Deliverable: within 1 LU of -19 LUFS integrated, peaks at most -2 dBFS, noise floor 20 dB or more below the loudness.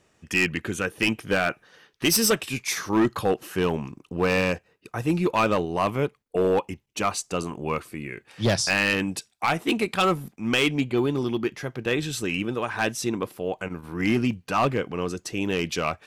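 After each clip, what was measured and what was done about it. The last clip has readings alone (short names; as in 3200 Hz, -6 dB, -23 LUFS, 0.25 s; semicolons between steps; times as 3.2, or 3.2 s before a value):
clipped 1.0%; flat tops at -15.0 dBFS; loudness -25.5 LUFS; peak -15.0 dBFS; loudness target -19.0 LUFS
-> clip repair -15 dBFS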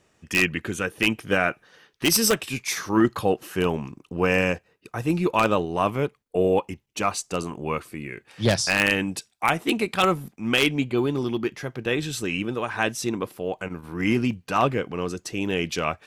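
clipped 0.0%; loudness -24.5 LUFS; peak -6.0 dBFS; loudness target -19.0 LUFS
-> gain +5.5 dB; limiter -2 dBFS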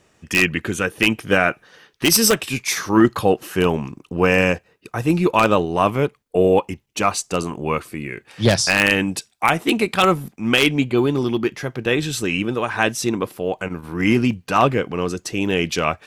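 loudness -19.5 LUFS; peak -2.0 dBFS; noise floor -61 dBFS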